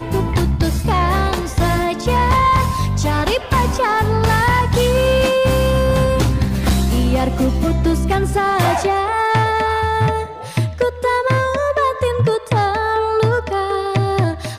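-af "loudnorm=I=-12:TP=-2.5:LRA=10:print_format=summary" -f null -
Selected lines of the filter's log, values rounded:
Input Integrated:    -17.1 LUFS
Input True Peak:      -8.4 dBTP
Input LRA:             2.3 LU
Input Threshold:     -27.1 LUFS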